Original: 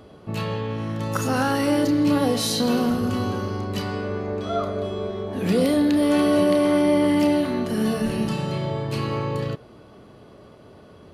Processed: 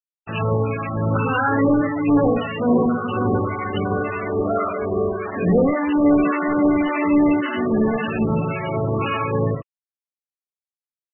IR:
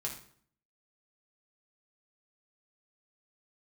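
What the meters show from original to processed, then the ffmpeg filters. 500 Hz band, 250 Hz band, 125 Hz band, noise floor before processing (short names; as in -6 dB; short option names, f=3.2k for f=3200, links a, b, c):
+2.0 dB, +2.5 dB, +3.5 dB, -48 dBFS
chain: -filter_complex "[0:a]equalizer=f=2k:t=o:w=2.2:g=5,bandreject=f=50:t=h:w=6,bandreject=f=100:t=h:w=6,bandreject=f=150:t=h:w=6,bandreject=f=200:t=h:w=6,bandreject=f=250:t=h:w=6,aresample=16000,acrusher=bits=4:mix=0:aa=0.5,aresample=44100,asoftclip=type=hard:threshold=-17dB,aecho=1:1:18|62:0.224|0.473,asoftclip=type=tanh:threshold=-16dB,acrossover=split=870[a][b];[a]aeval=exprs='val(0)*(1-0.7/2+0.7/2*cos(2*PI*1.8*n/s))':c=same[c];[b]aeval=exprs='val(0)*(1-0.7/2-0.7/2*cos(2*PI*1.8*n/s))':c=same[d];[c][d]amix=inputs=2:normalize=0,volume=7.5dB" -ar 24000 -c:a libmp3lame -b:a 8k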